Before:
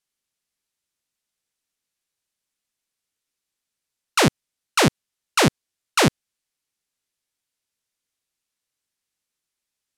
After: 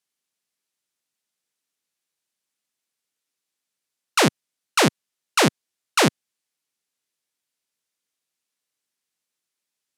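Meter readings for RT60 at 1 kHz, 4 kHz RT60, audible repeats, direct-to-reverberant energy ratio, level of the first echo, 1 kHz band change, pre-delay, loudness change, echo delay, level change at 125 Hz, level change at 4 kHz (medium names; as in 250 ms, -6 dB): no reverb, no reverb, no echo, no reverb, no echo, 0.0 dB, no reverb, -0.5 dB, no echo, -3.5 dB, 0.0 dB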